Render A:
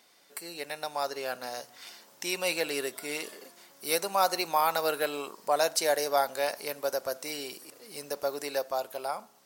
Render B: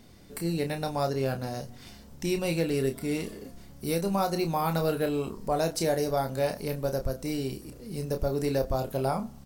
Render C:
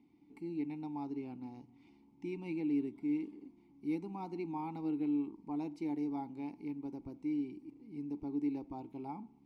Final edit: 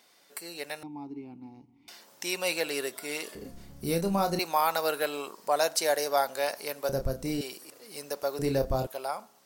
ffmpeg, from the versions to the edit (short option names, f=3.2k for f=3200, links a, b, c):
-filter_complex "[1:a]asplit=3[a][b][c];[0:a]asplit=5[d][e][f][g][h];[d]atrim=end=0.832[i];[2:a]atrim=start=0.828:end=1.882[j];[e]atrim=start=1.878:end=3.352[k];[a]atrim=start=3.348:end=4.392[l];[f]atrim=start=4.388:end=6.892[m];[b]atrim=start=6.888:end=7.412[n];[g]atrim=start=7.408:end=8.392[o];[c]atrim=start=8.388:end=8.872[p];[h]atrim=start=8.868[q];[i][j]acrossfade=d=0.004:c1=hsin:c2=hsin[r];[r][k]acrossfade=d=0.004:c1=hsin:c2=hsin[s];[s][l]acrossfade=d=0.004:c1=hsin:c2=hsin[t];[t][m]acrossfade=d=0.004:c1=hsin:c2=hsin[u];[u][n]acrossfade=d=0.004:c1=hsin:c2=hsin[v];[v][o]acrossfade=d=0.004:c1=hsin:c2=hsin[w];[w][p]acrossfade=d=0.004:c1=hsin:c2=hsin[x];[x][q]acrossfade=d=0.004:c1=hsin:c2=hsin"